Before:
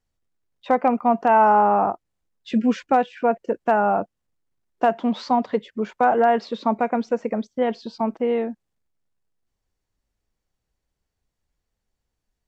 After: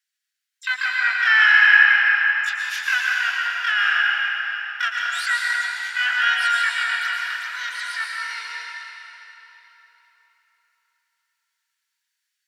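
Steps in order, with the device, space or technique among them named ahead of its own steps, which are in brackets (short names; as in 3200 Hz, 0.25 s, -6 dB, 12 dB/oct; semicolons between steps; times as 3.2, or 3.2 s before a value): shimmer-style reverb (harmoniser +12 st -5 dB; reverb RT60 3.9 s, pre-delay 0.105 s, DRR -3.5 dB); Chebyshev high-pass 1600 Hz, order 4; gain +5 dB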